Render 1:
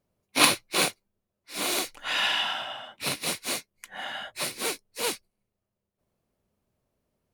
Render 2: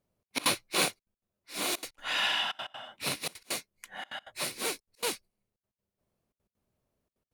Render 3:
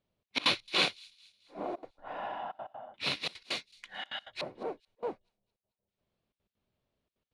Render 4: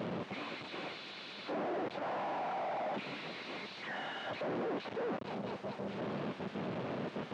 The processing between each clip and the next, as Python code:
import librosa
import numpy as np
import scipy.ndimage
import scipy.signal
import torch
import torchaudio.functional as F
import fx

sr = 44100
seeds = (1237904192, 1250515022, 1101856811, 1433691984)

y1 = fx.step_gate(x, sr, bpm=197, pattern='xxx.x.xxxx', floor_db=-24.0, edge_ms=4.5)
y1 = y1 * librosa.db_to_amplitude(-3.0)
y2 = fx.filter_lfo_lowpass(y1, sr, shape='square', hz=0.34, low_hz=720.0, high_hz=3600.0, q=1.9)
y2 = fx.high_shelf(y2, sr, hz=6800.0, db=4.5)
y2 = fx.echo_wet_highpass(y2, sr, ms=219, feedback_pct=45, hz=4600.0, wet_db=-19.0)
y2 = y2 * librosa.db_to_amplitude(-2.5)
y3 = np.sign(y2) * np.sqrt(np.mean(np.square(y2)))
y3 = scipy.signal.sosfilt(scipy.signal.butter(4, 150.0, 'highpass', fs=sr, output='sos'), y3)
y3 = fx.spacing_loss(y3, sr, db_at_10k=43)
y3 = y3 * librosa.db_to_amplitude(6.0)